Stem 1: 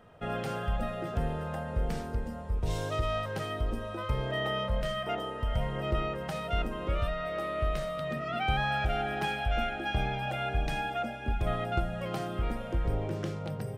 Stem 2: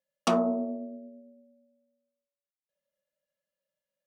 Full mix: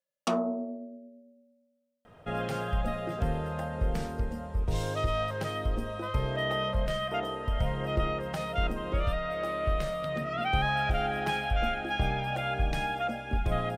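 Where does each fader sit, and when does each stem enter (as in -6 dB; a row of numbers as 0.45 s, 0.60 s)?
+1.5 dB, -3.5 dB; 2.05 s, 0.00 s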